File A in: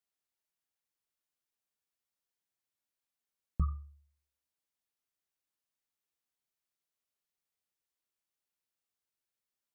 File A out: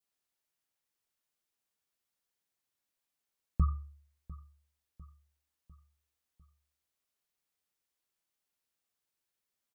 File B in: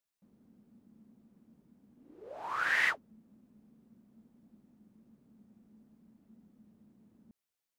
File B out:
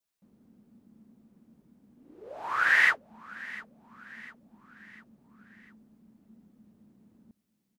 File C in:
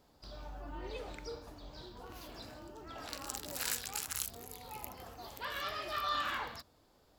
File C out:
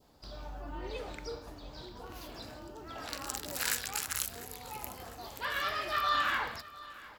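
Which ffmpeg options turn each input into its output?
ffmpeg -i in.wav -filter_complex "[0:a]adynamicequalizer=threshold=0.00316:dfrequency=1700:dqfactor=1.4:tfrequency=1700:tqfactor=1.4:attack=5:release=100:ratio=0.375:range=2.5:mode=boostabove:tftype=bell,asplit=2[link_01][link_02];[link_02]aecho=0:1:700|1400|2100|2800:0.112|0.0561|0.0281|0.014[link_03];[link_01][link_03]amix=inputs=2:normalize=0,volume=3dB" out.wav

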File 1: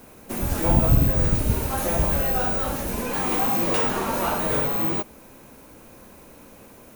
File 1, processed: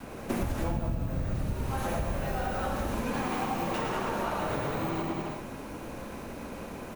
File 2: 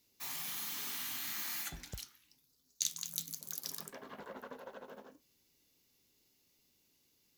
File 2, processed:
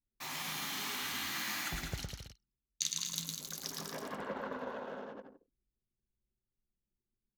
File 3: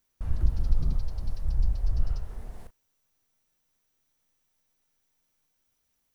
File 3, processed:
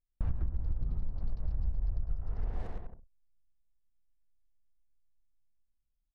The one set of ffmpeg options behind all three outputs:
ffmpeg -i in.wav -filter_complex "[0:a]aemphasis=mode=reproduction:type=50kf,asplit=2[link_01][link_02];[link_02]aecho=0:1:110|198|268.4|324.7|369.8:0.631|0.398|0.251|0.158|0.1[link_03];[link_01][link_03]amix=inputs=2:normalize=0,acompressor=threshold=-33dB:ratio=20,adynamicequalizer=threshold=0.00282:dfrequency=460:dqfactor=2.4:tfrequency=460:tqfactor=2.4:attack=5:release=100:ratio=0.375:range=1.5:mode=cutabove:tftype=bell,anlmdn=0.0000398,volume=6.5dB" out.wav

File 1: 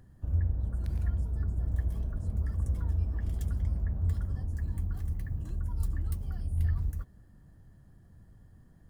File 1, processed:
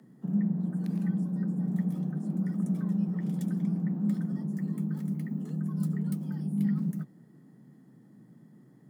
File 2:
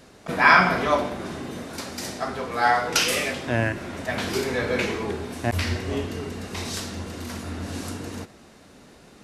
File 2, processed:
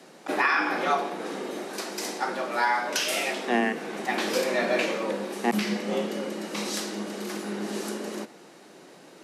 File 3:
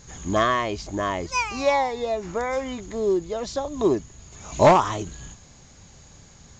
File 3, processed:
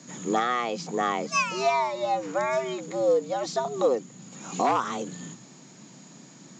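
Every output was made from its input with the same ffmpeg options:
ffmpeg -i in.wav -af "afreqshift=120,alimiter=limit=-13dB:level=0:latency=1:release=444" out.wav

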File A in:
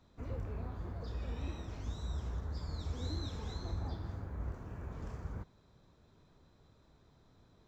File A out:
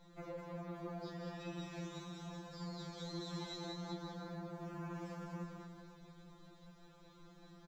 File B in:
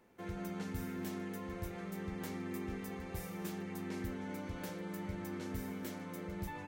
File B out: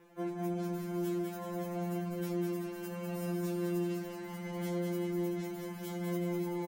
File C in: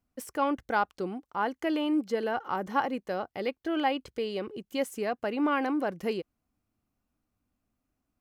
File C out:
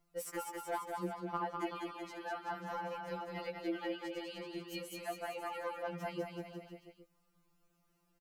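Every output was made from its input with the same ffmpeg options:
ffmpeg -i in.wav -filter_complex "[0:a]acompressor=threshold=-43dB:ratio=8,asplit=2[link_01][link_02];[link_02]aecho=0:1:200|380|542|687.8|819:0.631|0.398|0.251|0.158|0.1[link_03];[link_01][link_03]amix=inputs=2:normalize=0,afftfilt=real='re*2.83*eq(mod(b,8),0)':imag='im*2.83*eq(mod(b,8),0)':win_size=2048:overlap=0.75,volume=7.5dB" out.wav

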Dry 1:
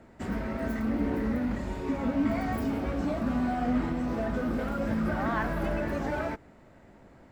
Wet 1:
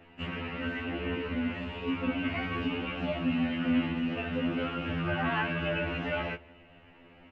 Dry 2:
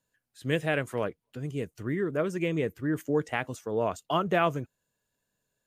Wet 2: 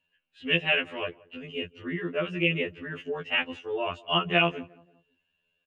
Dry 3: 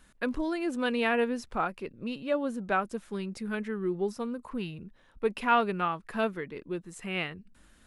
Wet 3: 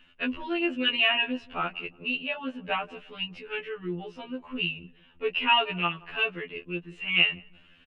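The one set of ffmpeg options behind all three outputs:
ffmpeg -i in.wav -filter_complex "[0:a]lowpass=frequency=2800:width_type=q:width=11,asplit=2[link_01][link_02];[link_02]adelay=175,lowpass=frequency=1100:poles=1,volume=-21.5dB,asplit=2[link_03][link_04];[link_04]adelay=175,lowpass=frequency=1100:poles=1,volume=0.42,asplit=2[link_05][link_06];[link_06]adelay=175,lowpass=frequency=1100:poles=1,volume=0.42[link_07];[link_03][link_05][link_07]amix=inputs=3:normalize=0[link_08];[link_01][link_08]amix=inputs=2:normalize=0,afftfilt=real='re*2*eq(mod(b,4),0)':imag='im*2*eq(mod(b,4),0)':win_size=2048:overlap=0.75" out.wav

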